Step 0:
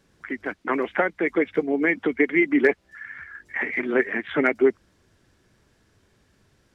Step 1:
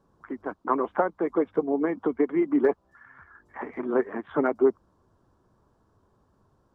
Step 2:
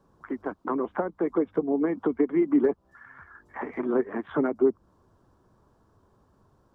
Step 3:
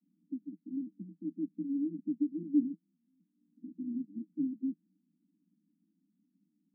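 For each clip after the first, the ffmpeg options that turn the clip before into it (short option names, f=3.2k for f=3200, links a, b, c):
-af "highshelf=f=1.5k:t=q:w=3:g=-11.5,volume=-3dB"
-filter_complex "[0:a]acrossover=split=380[a][b];[b]acompressor=threshold=-33dB:ratio=4[c];[a][c]amix=inputs=2:normalize=0,volume=2.5dB"
-af "asuperpass=centerf=230:order=20:qfactor=1.5,volume=-5.5dB"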